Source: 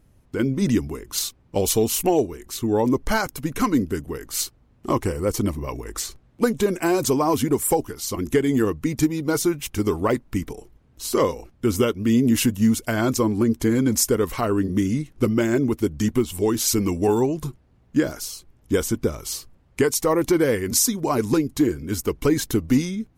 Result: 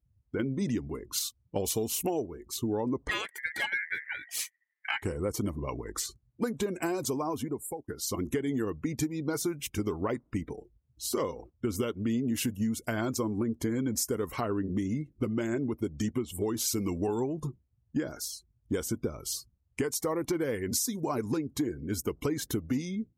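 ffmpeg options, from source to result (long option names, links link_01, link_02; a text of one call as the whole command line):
ffmpeg -i in.wav -filter_complex "[0:a]asettb=1/sr,asplit=3[link_01][link_02][link_03];[link_01]atrim=end=3.094[link_04];[link_02]atrim=start=3.09:end=5.03,asetpts=PTS-STARTPTS,afade=type=in:duration=0.004:curve=qsin,afade=type=out:start_time=1.936:duration=0.004:curve=qsin,aeval=exprs='val(0)*sin(2*PI*1900*n/s)':channel_layout=same[link_05];[link_03]atrim=start=5.026[link_06];[link_04][link_05]acrossfade=duration=0.004:curve1=hsin:curve2=qsin[link_07];[link_07][link_06]acrossfade=duration=0.004:curve1=qsin:curve2=hsin,asplit=2[link_08][link_09];[link_08]atrim=end=7.88,asetpts=PTS-STARTPTS,afade=type=out:start_time=6.84:duration=1.04:silence=0.0749894[link_10];[link_09]atrim=start=7.88,asetpts=PTS-STARTPTS,afade=type=in:duration=0.004:curve=hsin:silence=0.0749894[link_11];[link_10][link_11]concat=n=2:v=0:a=1,afftdn=noise_reduction=25:noise_floor=-42,highpass=67,acompressor=threshold=-24dB:ratio=4,volume=-4dB" out.wav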